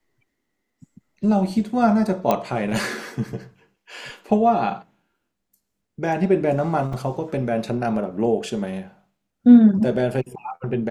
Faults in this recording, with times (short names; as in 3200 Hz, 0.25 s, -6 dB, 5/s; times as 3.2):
2.31 pop -7 dBFS
6.93 gap 4 ms